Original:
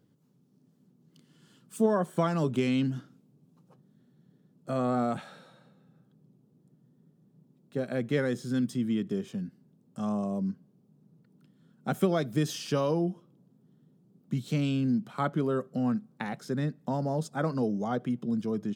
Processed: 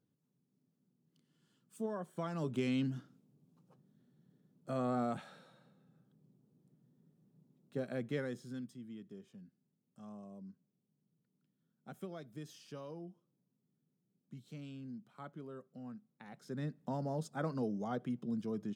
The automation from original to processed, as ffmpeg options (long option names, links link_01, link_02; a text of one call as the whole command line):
ffmpeg -i in.wav -af "volume=5dB,afade=type=in:start_time=2.16:duration=0.52:silence=0.421697,afade=type=out:start_time=7.78:duration=0.98:silence=0.223872,afade=type=in:start_time=16.23:duration=0.51:silence=0.251189" out.wav